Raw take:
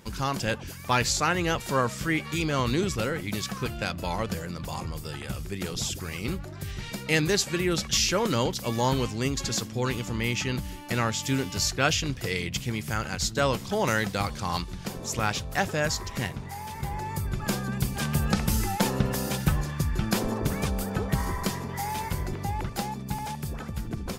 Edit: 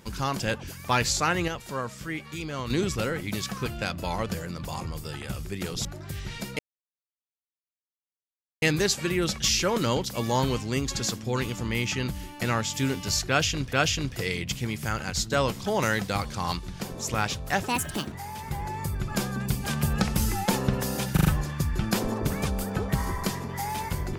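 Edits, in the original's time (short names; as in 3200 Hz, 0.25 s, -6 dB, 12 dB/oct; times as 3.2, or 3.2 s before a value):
1.48–2.7 gain -7 dB
5.85–6.37 cut
7.11 insert silence 2.03 s
11.78–12.22 loop, 2 plays
15.73–16.44 speed 161%
19.45 stutter 0.04 s, 4 plays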